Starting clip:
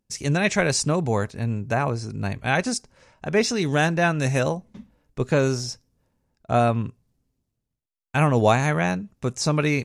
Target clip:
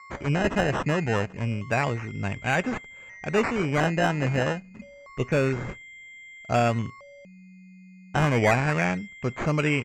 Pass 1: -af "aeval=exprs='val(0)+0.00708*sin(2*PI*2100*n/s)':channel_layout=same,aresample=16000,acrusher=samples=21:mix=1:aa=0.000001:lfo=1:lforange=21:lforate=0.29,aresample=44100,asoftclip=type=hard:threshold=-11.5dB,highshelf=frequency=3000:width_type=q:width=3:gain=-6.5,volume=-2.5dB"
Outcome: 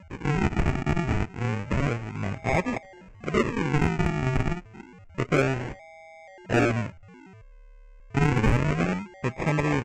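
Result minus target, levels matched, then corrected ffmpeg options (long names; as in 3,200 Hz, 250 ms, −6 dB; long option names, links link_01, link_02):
sample-and-hold swept by an LFO: distortion +12 dB
-af "aeval=exprs='val(0)+0.00708*sin(2*PI*2100*n/s)':channel_layout=same,aresample=16000,acrusher=samples=5:mix=1:aa=0.000001:lfo=1:lforange=5:lforate=0.29,aresample=44100,asoftclip=type=hard:threshold=-11.5dB,highshelf=frequency=3000:width_type=q:width=3:gain=-6.5,volume=-2.5dB"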